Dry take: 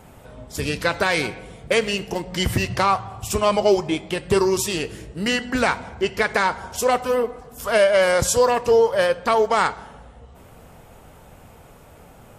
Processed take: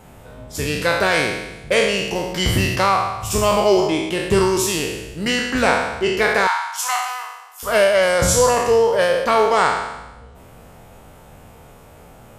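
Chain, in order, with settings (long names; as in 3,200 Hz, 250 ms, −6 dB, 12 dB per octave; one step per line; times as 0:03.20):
peak hold with a decay on every bin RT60 1.01 s
0:06.47–0:07.63: Butterworth high-pass 800 Hz 48 dB per octave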